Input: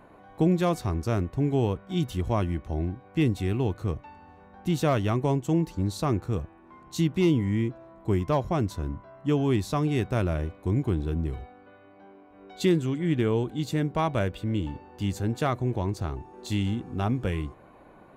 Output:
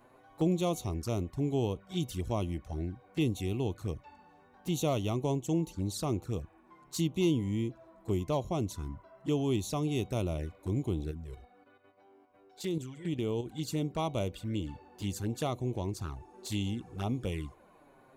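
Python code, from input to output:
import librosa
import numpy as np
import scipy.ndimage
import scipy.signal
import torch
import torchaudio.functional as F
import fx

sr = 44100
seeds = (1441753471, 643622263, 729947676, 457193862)

y = fx.bass_treble(x, sr, bass_db=-3, treble_db=9)
y = fx.level_steps(y, sr, step_db=9, at=(11.11, 13.46))
y = fx.env_flanger(y, sr, rest_ms=9.4, full_db=-25.0)
y = y * librosa.db_to_amplitude(-4.0)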